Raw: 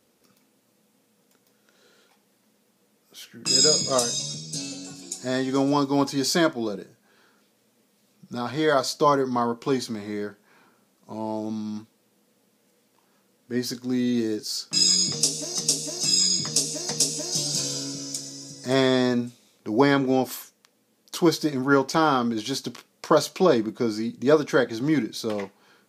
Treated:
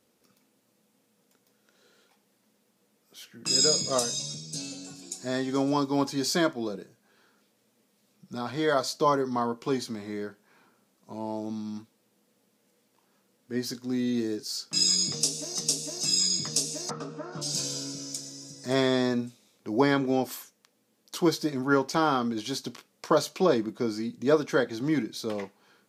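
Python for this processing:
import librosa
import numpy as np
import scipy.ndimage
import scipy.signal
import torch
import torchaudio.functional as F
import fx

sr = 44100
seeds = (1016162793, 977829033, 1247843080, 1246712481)

y = fx.lowpass_res(x, sr, hz=1300.0, q=13.0, at=(16.89, 17.41), fade=0.02)
y = F.gain(torch.from_numpy(y), -4.0).numpy()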